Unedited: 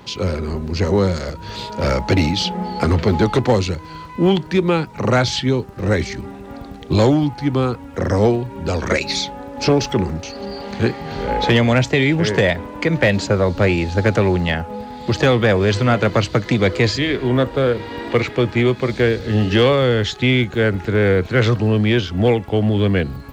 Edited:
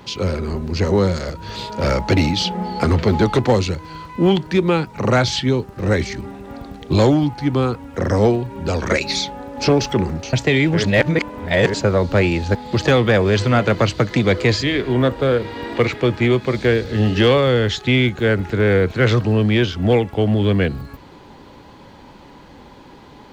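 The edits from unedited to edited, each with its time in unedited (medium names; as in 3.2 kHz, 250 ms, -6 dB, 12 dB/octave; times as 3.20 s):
10.33–11.79 s: delete
12.30–13.20 s: reverse
14.01–14.90 s: delete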